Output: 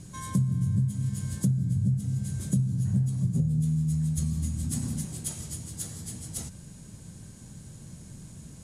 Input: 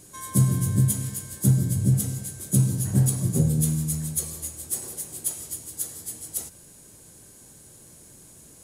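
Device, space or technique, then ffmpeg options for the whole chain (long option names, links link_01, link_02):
jukebox: -filter_complex "[0:a]asettb=1/sr,asplit=3[link_01][link_02][link_03];[link_01]atrim=end=4.184[link_04];[link_02]atrim=start=4.18:end=5.05,asetpts=PTS-STARTPTS,afade=type=in:duration=0.004:curve=qsin,afade=type=out:start_time=0.866:duration=0.004:curve=qsin,lowshelf=frequency=320:width_type=q:width=3:gain=6.5[link_05];[link_03]atrim=start=5.046[link_06];[link_04][link_05]acrossfade=duration=0.004:curve1=hsin:curve2=qsin[link_07];[link_07][link_06]acrossfade=duration=0.004:curve1=qsin:curve2=hsin,lowpass=7500,lowshelf=frequency=260:width_type=q:width=1.5:gain=10,acompressor=threshold=-25dB:ratio=5"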